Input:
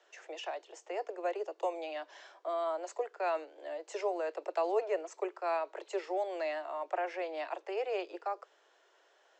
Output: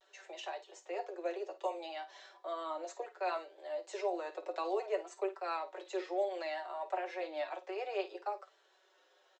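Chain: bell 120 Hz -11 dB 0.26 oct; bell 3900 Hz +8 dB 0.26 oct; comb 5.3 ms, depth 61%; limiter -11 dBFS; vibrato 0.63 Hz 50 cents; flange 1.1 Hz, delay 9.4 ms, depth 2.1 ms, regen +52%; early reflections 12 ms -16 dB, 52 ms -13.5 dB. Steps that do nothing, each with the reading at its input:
bell 120 Hz: input band starts at 290 Hz; limiter -11 dBFS: input peak -17.0 dBFS

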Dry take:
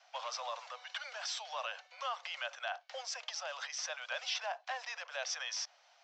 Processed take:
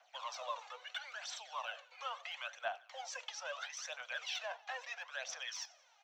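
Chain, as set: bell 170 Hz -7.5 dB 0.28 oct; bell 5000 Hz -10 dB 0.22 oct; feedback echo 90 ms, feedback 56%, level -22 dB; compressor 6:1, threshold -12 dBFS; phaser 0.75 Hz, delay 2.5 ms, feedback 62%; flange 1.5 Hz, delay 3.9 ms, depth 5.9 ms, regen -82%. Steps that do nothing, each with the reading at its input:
bell 170 Hz: input band starts at 430 Hz; compressor, threshold -12 dBFS: input peak -24.5 dBFS

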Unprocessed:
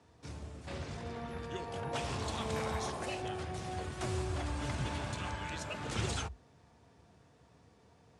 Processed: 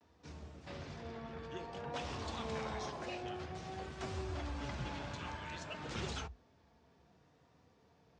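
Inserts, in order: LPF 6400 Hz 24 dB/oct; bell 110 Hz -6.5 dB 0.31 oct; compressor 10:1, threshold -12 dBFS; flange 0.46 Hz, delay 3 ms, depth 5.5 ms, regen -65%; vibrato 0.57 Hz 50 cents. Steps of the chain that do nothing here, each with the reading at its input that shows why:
compressor, threshold -12 dBFS: input peak -22.0 dBFS

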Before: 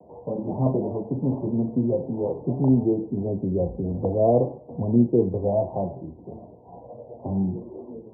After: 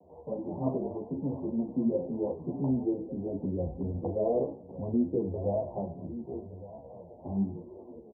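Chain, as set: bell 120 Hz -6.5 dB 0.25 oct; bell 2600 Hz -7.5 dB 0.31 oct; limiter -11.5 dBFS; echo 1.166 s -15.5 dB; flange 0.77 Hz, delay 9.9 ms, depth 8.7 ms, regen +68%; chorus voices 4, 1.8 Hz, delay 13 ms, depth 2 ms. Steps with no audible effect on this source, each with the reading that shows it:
bell 2600 Hz: input band ends at 910 Hz

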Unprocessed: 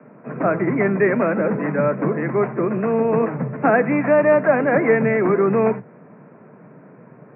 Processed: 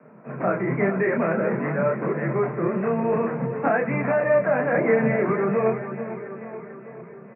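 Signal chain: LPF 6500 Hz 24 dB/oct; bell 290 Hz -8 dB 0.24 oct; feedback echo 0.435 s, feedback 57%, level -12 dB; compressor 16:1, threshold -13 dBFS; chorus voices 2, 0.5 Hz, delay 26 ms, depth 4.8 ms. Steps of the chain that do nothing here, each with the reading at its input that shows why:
LPF 6500 Hz: input band ends at 2400 Hz

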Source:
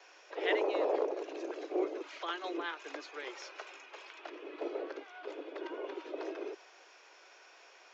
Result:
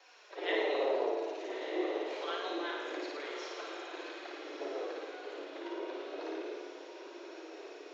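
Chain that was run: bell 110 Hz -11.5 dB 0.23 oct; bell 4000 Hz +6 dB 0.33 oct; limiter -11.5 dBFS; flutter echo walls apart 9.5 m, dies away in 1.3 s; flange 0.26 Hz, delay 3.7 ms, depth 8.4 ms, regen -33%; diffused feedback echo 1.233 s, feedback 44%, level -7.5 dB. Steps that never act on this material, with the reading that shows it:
bell 110 Hz: input band starts at 250 Hz; limiter -11.5 dBFS: input peak -18.5 dBFS

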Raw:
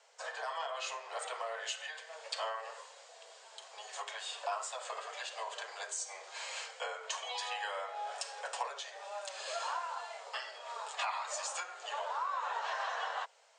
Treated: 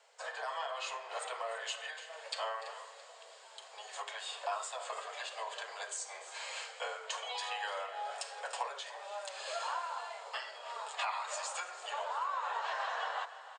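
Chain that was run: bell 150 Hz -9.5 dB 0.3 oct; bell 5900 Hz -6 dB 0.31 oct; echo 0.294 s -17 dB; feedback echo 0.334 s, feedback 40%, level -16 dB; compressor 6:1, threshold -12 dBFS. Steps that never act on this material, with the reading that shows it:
bell 150 Hz: input band starts at 380 Hz; compressor, threshold -12 dBFS: input peak -21.0 dBFS

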